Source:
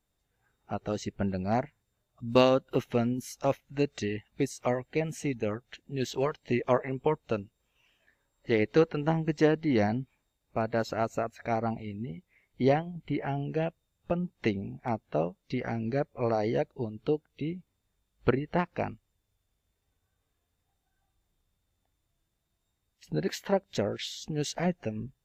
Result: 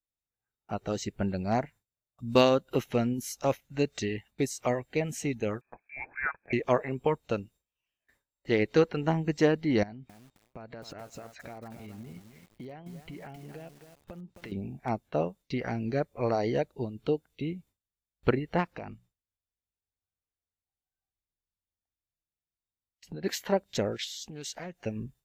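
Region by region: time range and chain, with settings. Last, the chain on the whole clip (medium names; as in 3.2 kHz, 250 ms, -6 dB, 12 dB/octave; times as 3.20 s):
5.61–6.53 s: resonant low shelf 660 Hz -9 dB, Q 3 + frequency inversion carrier 2.5 kHz
9.83–14.52 s: low-pass 5.7 kHz + compression 12:1, threshold -40 dBFS + bit-crushed delay 265 ms, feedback 35%, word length 9-bit, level -8 dB
18.73–23.24 s: treble shelf 5.1 kHz -7 dB + hum notches 60/120/180 Hz + compression, threshold -36 dBFS
24.04–24.86 s: bass shelf 500 Hz -7 dB + compression 2.5:1, threshold -40 dBFS + loudspeaker Doppler distortion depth 0.13 ms
whole clip: gate with hold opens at -52 dBFS; treble shelf 5.2 kHz +7 dB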